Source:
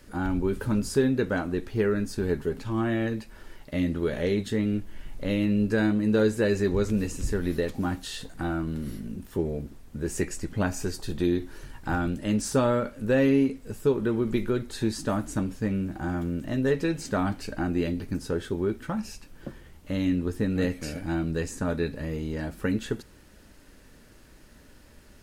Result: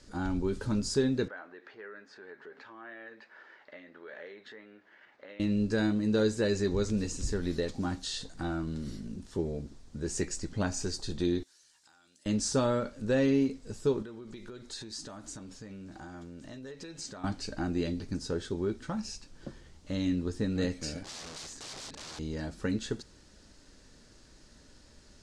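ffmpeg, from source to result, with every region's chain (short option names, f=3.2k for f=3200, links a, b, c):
-filter_complex "[0:a]asettb=1/sr,asplit=3[a][b][c];[a]atrim=end=1.284[d];[b]atrim=start=1.28:end=5.4,asetpts=PTS-STARTPTS,afade=t=in:d=0.004:c=qsin,afade=t=out:st=4.116:d=0.004:c=qsin,equalizer=f=1.7k:t=o:w=0.77:g=8.5,acompressor=threshold=-35dB:ratio=4:attack=3.2:release=140:knee=1:detection=peak,asuperpass=centerf=1100:order=4:qfactor=0.54[e];[c]atrim=start=5.396[f];[d][e]acrossfade=d=0.004:c1=hsin:c2=qsin[g];[g][f]acrossfade=d=0.004:c1=qsin:c2=hsin,asettb=1/sr,asplit=3[h][i][j];[h]atrim=end=11.434[k];[i]atrim=start=11.43:end=12.26,asetpts=PTS-STARTPTS,afade=t=in:d=0.004:c=qsin,afade=t=out:st=0.826:d=0.004:c=qsin,aderivative,acompressor=threshold=-57dB:ratio=4:attack=3.2:release=140:knee=1:detection=peak[l];[j]atrim=start=12.256[m];[k][l]acrossfade=d=0.004:c1=hsin:c2=qsin[n];[n][m]acrossfade=d=0.004:c1=qsin:c2=hsin,asettb=1/sr,asplit=3[o][p][q];[o]atrim=end=14.024[r];[p]atrim=start=14.02:end=17.24,asetpts=PTS-STARTPTS,afade=t=in:d=0.004:c=qsin,afade=t=out:st=3.216:d=0.004:c=qsin,lowshelf=f=330:g=-8,acompressor=threshold=-37dB:ratio=6:attack=3.2:release=140:knee=1:detection=peak[s];[q]atrim=start=17.236[t];[r][s]acrossfade=d=0.004:c1=hsin:c2=qsin[u];[u][t]acrossfade=d=0.004:c1=qsin:c2=hsin,asettb=1/sr,asplit=3[v][w][x];[v]atrim=end=21.034[y];[w]atrim=start=21.03:end=22.19,asetpts=PTS-STARTPTS,afade=t=in:d=0.004:c=qsin,afade=t=out:st=1.156:d=0.004:c=qsin,lowpass=f=2k:p=1,tiltshelf=f=1.1k:g=-5.5,aeval=exprs='(mod(66.8*val(0)+1,2)-1)/66.8':c=same[z];[x]atrim=start=22.186[aa];[y][z]acrossfade=d=0.004:c1=hsin:c2=qsin[ab];[ab][aa]acrossfade=d=0.004:c1=qsin:c2=hsin,lowpass=f=7.8k:w=0.5412,lowpass=f=7.8k:w=1.3066,highshelf=f=3.4k:t=q:w=1.5:g=6,volume=-4.5dB"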